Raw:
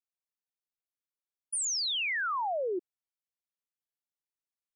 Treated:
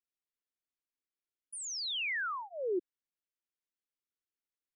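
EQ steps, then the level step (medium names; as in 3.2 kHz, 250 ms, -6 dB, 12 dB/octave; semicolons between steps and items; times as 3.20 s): low-pass 2.1 kHz 6 dB/octave; static phaser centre 310 Hz, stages 4; +1.5 dB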